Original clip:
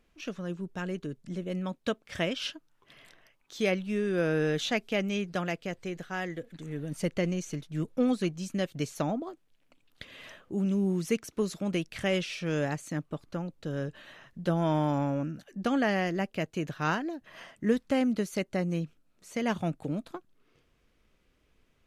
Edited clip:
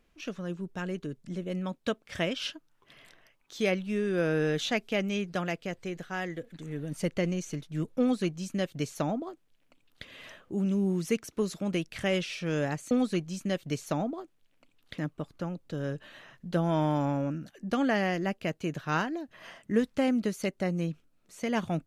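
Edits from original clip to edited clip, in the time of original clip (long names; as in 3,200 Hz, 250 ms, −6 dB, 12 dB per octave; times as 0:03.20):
0:08.00–0:10.07: duplicate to 0:12.91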